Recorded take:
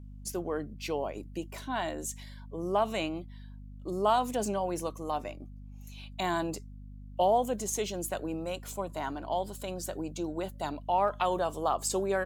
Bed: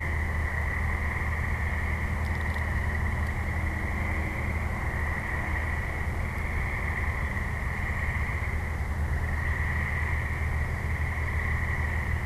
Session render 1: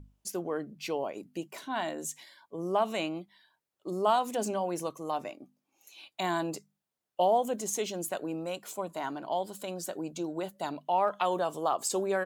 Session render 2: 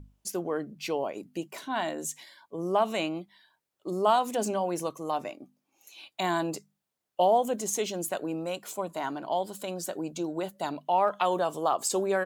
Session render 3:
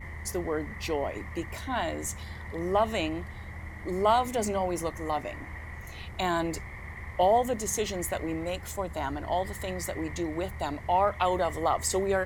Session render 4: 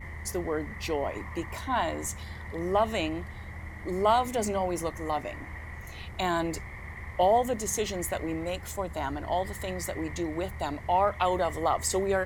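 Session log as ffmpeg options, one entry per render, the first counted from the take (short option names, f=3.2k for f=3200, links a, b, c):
-af "bandreject=f=50:t=h:w=6,bandreject=f=100:t=h:w=6,bandreject=f=150:t=h:w=6,bandreject=f=200:t=h:w=6,bandreject=f=250:t=h:w=6"
-af "volume=2.5dB"
-filter_complex "[1:a]volume=-11.5dB[a];[0:a][a]amix=inputs=2:normalize=0"
-filter_complex "[0:a]asettb=1/sr,asplit=3[a][b][c];[a]atrim=end=1.064[d];[b]atrim=start=1.06:end=2.08,asetpts=PTS-STARTPTS,afade=t=in:d=0.004:c=qsin,afade=t=out:st=1.016:d=0.004:c=qsin,equalizer=f=990:w=2.7:g=6[e];[c]atrim=start=2.076[f];[d][e]acrossfade=d=0.004:c1=hsin:c2=qsin[g];[g][f]acrossfade=d=0.004:c1=qsin:c2=hsin"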